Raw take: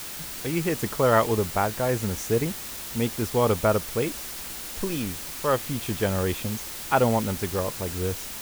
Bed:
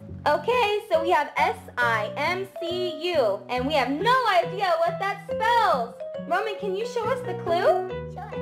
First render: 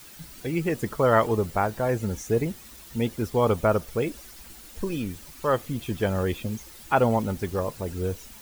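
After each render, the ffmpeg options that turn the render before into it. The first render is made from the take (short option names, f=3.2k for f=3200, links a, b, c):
-af "afftdn=nr=12:nf=-36"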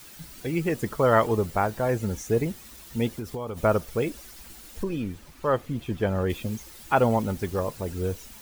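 -filter_complex "[0:a]asplit=3[a][b][c];[a]afade=t=out:st=3.15:d=0.02[d];[b]acompressor=threshold=-28dB:ratio=12:attack=3.2:release=140:knee=1:detection=peak,afade=t=in:st=3.15:d=0.02,afade=t=out:st=3.56:d=0.02[e];[c]afade=t=in:st=3.56:d=0.02[f];[d][e][f]amix=inputs=3:normalize=0,asettb=1/sr,asplit=3[g][h][i];[g]atrim=end=4.834[j];[h]atrim=start=4.83:end=6.3,asetpts=PTS-STARTPTS,afade=t=in:d=0.004:c=qsin,afade=t=out:st=1.466:d=0.004:c=qsin,highshelf=f=3.8k:g=-10.5[k];[i]atrim=start=6.296[l];[j][k]acrossfade=d=0.004:c1=hsin:c2=qsin[m];[m][l]acrossfade=d=0.004:c1=qsin:c2=hsin"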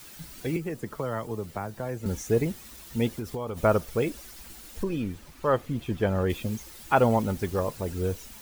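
-filter_complex "[0:a]asettb=1/sr,asplit=3[a][b][c];[a]atrim=end=0.564[d];[b]atrim=start=0.56:end=2.06,asetpts=PTS-STARTPTS,afade=t=in:d=0.004:c=qsin,afade=t=out:st=1.496:d=0.004:c=qsin,acrossover=split=82|250|2100|4200[e][f][g][h][i];[e]acompressor=threshold=-56dB:ratio=3[j];[f]acompressor=threshold=-38dB:ratio=3[k];[g]acompressor=threshold=-35dB:ratio=3[l];[h]acompressor=threshold=-57dB:ratio=3[m];[i]acompressor=threshold=-54dB:ratio=3[n];[j][k][l][m][n]amix=inputs=5:normalize=0[o];[c]atrim=start=2.056[p];[d][o]acrossfade=d=0.004:c1=hsin:c2=qsin[q];[q][p]acrossfade=d=0.004:c1=qsin:c2=hsin"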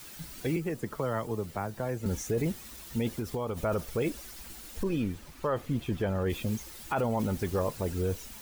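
-af "alimiter=limit=-20dB:level=0:latency=1:release=20"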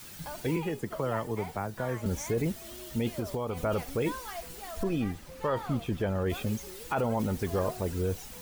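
-filter_complex "[1:a]volume=-20.5dB[a];[0:a][a]amix=inputs=2:normalize=0"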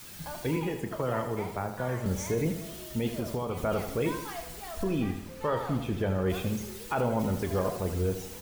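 -filter_complex "[0:a]asplit=2[a][b];[b]adelay=32,volume=-12dB[c];[a][c]amix=inputs=2:normalize=0,aecho=1:1:80|160|240|320|400|480:0.335|0.181|0.0977|0.0527|0.0285|0.0154"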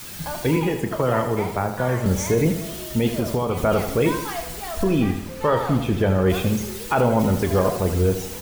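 -af "volume=9.5dB"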